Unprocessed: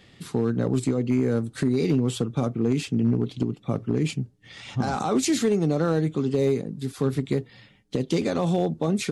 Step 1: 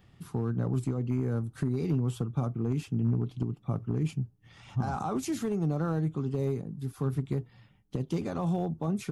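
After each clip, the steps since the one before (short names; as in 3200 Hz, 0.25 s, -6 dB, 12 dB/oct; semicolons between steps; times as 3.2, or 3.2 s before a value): graphic EQ 250/500/2000/4000/8000 Hz -7/-10/-10/-12/-11 dB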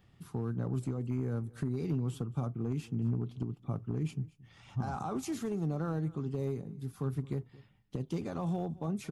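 echo 0.225 s -21.5 dB; gain -4.5 dB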